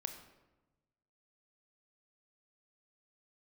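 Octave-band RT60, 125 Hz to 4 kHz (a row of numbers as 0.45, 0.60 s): 1.6, 1.4, 1.2, 1.0, 0.85, 0.65 s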